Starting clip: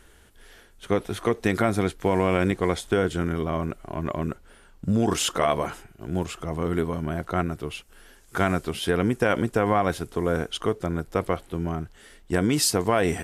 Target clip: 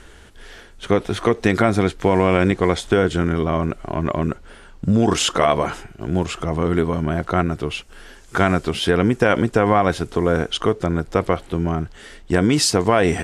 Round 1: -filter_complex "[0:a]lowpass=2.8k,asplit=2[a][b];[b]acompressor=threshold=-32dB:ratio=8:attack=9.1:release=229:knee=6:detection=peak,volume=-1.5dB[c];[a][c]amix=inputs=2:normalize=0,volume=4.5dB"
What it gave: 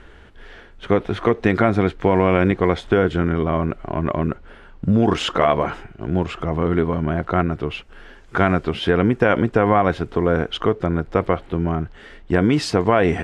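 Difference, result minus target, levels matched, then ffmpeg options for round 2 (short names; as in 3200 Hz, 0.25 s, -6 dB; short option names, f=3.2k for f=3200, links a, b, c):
8000 Hz band -13.0 dB
-filter_complex "[0:a]lowpass=7.5k,asplit=2[a][b];[b]acompressor=threshold=-32dB:ratio=8:attack=9.1:release=229:knee=6:detection=peak,volume=-1.5dB[c];[a][c]amix=inputs=2:normalize=0,volume=4.5dB"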